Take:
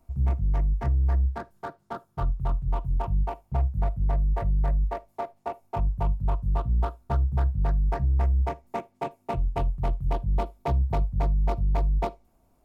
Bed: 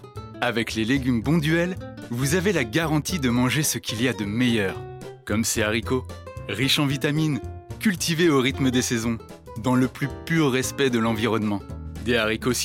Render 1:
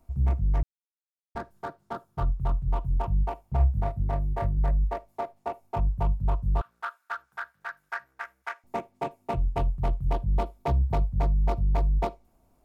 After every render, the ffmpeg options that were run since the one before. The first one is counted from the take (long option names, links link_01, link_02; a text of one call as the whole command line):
ffmpeg -i in.wav -filter_complex "[0:a]asettb=1/sr,asplit=3[link_01][link_02][link_03];[link_01]atrim=end=3.574[link_04];[link_02]atrim=start=3.57:end=4.58,asetpts=PTS-STARTPTS,afade=type=in:duration=0.004:curve=qsin,afade=type=out:start_time=1.006:duration=0.004:curve=qsin,asplit=2[link_05][link_06];[link_06]adelay=29,volume=-5dB[link_07];[link_05][link_07]amix=inputs=2:normalize=0,atrim=end_sample=44541[link_08];[link_03]atrim=start=4.576[link_09];[link_04][link_08]acrossfade=duration=0.004:curve1=hsin:curve2=qsin[link_10];[link_10][link_09]acrossfade=duration=0.004:curve1=qsin:curve2=hsin,asettb=1/sr,asplit=3[link_11][link_12][link_13];[link_11]atrim=end=6.614[link_14];[link_12]atrim=start=6.61:end=8.64,asetpts=PTS-STARTPTS,afade=type=in:duration=0.004:curve=qsin,afade=type=out:start_time=2.026:duration=0.004:curve=qsin,highpass=frequency=1500:width_type=q:width=4.8[link_15];[link_13]atrim=start=8.636[link_16];[link_14][link_15]acrossfade=duration=0.004:curve1=hsin:curve2=qsin[link_17];[link_17][link_16]acrossfade=duration=0.004:curve1=qsin:curve2=hsin,asplit=3[link_18][link_19][link_20];[link_18]atrim=end=0.63,asetpts=PTS-STARTPTS,afade=type=out:start_time=0.626:duration=0.004:curve=hsin[link_21];[link_19]atrim=start=0.63:end=1.35,asetpts=PTS-STARTPTS,volume=0[link_22];[link_20]atrim=start=1.35,asetpts=PTS-STARTPTS,afade=type=in:duration=0.004:curve=hsin[link_23];[link_21][link_22][link_23]concat=n=3:v=0:a=1" out.wav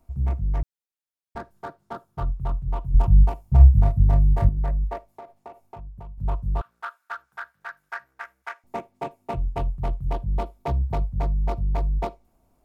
ffmpeg -i in.wav -filter_complex "[0:a]asettb=1/sr,asplit=3[link_01][link_02][link_03];[link_01]atrim=end=2.944[link_04];[link_02]atrim=start=2.94:end=4.49,asetpts=PTS-STARTPTS,afade=type=in:duration=0.004:curve=qsin,afade=type=out:start_time=1.546:duration=0.004:curve=qsin,bass=frequency=250:gain=11,treble=frequency=4000:gain=7[link_05];[link_03]atrim=start=4.486[link_06];[link_04][link_05]acrossfade=duration=0.004:curve1=hsin:curve2=qsin[link_07];[link_07][link_06]acrossfade=duration=0.004:curve1=qsin:curve2=hsin,asettb=1/sr,asplit=3[link_08][link_09][link_10];[link_08]atrim=end=5.114[link_11];[link_09]atrim=start=5.11:end=6.18,asetpts=PTS-STARTPTS,afade=type=in:duration=0.004:curve=qsin,afade=type=out:start_time=1.066:duration=0.004:curve=qsin,acompressor=threshold=-37dB:ratio=6:attack=3.2:release=140:knee=1:detection=peak[link_12];[link_10]atrim=start=6.176[link_13];[link_11][link_12]acrossfade=duration=0.004:curve1=hsin:curve2=qsin[link_14];[link_14][link_13]acrossfade=duration=0.004:curve1=qsin:curve2=hsin" out.wav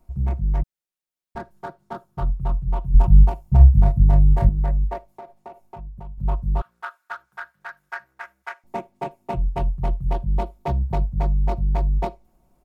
ffmpeg -i in.wav -af "lowshelf=frequency=380:gain=3,aecho=1:1:5.5:0.43" out.wav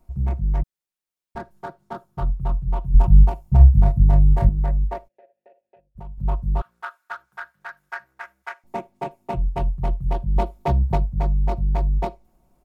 ffmpeg -i in.wav -filter_complex "[0:a]asplit=3[link_01][link_02][link_03];[link_01]afade=type=out:start_time=5.07:duration=0.02[link_04];[link_02]asplit=3[link_05][link_06][link_07];[link_05]bandpass=frequency=530:width_type=q:width=8,volume=0dB[link_08];[link_06]bandpass=frequency=1840:width_type=q:width=8,volume=-6dB[link_09];[link_07]bandpass=frequency=2480:width_type=q:width=8,volume=-9dB[link_10];[link_08][link_09][link_10]amix=inputs=3:normalize=0,afade=type=in:start_time=5.07:duration=0.02,afade=type=out:start_time=5.95:duration=0.02[link_11];[link_03]afade=type=in:start_time=5.95:duration=0.02[link_12];[link_04][link_11][link_12]amix=inputs=3:normalize=0,asplit=3[link_13][link_14][link_15];[link_13]atrim=end=10.362[link_16];[link_14]atrim=start=10.358:end=10.972,asetpts=PTS-STARTPTS,volume=3.5dB[link_17];[link_15]atrim=start=10.968[link_18];[link_16][link_17]acrossfade=duration=0.004:curve1=hsin:curve2=hsin[link_19];[link_19][link_18]acrossfade=duration=0.004:curve1=hsin:curve2=hsin" out.wav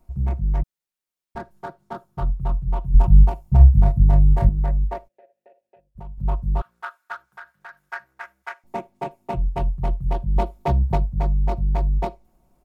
ffmpeg -i in.wav -filter_complex "[0:a]asettb=1/sr,asplit=3[link_01][link_02][link_03];[link_01]atrim=end=7.264[link_04];[link_02]atrim=start=7.26:end=7.82,asetpts=PTS-STARTPTS,afade=type=in:duration=0.004:curve=qsin,afade=type=out:start_time=0.556:duration=0.004:curve=qsin,acompressor=threshold=-39dB:ratio=2:attack=3.2:release=140:knee=1:detection=peak[link_05];[link_03]atrim=start=7.816[link_06];[link_04][link_05]acrossfade=duration=0.004:curve1=hsin:curve2=qsin[link_07];[link_07][link_06]acrossfade=duration=0.004:curve1=qsin:curve2=hsin" out.wav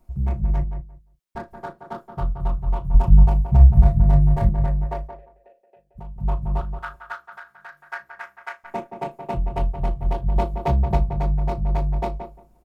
ffmpeg -i in.wav -filter_complex "[0:a]asplit=2[link_01][link_02];[link_02]adelay=35,volume=-12dB[link_03];[link_01][link_03]amix=inputs=2:normalize=0,asplit=2[link_04][link_05];[link_05]adelay=175,lowpass=frequency=1800:poles=1,volume=-8dB,asplit=2[link_06][link_07];[link_07]adelay=175,lowpass=frequency=1800:poles=1,volume=0.18,asplit=2[link_08][link_09];[link_09]adelay=175,lowpass=frequency=1800:poles=1,volume=0.18[link_10];[link_04][link_06][link_08][link_10]amix=inputs=4:normalize=0" out.wav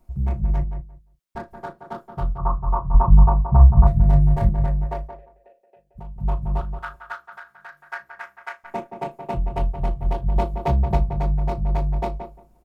ffmpeg -i in.wav -filter_complex "[0:a]asettb=1/sr,asplit=3[link_01][link_02][link_03];[link_01]atrim=end=2.384[link_04];[link_02]atrim=start=2.38:end=3.87,asetpts=PTS-STARTPTS,afade=type=in:duration=0.004:curve=qsin,afade=type=out:start_time=1.486:duration=0.004:curve=qsin,lowpass=frequency=1100:width_type=q:width=6.4[link_05];[link_03]atrim=start=3.866[link_06];[link_04][link_05]acrossfade=duration=0.004:curve1=hsin:curve2=qsin[link_07];[link_07][link_06]acrossfade=duration=0.004:curve1=qsin:curve2=hsin" out.wav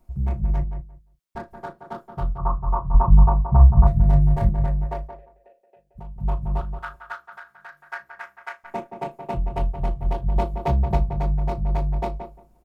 ffmpeg -i in.wav -af "volume=-1dB" out.wav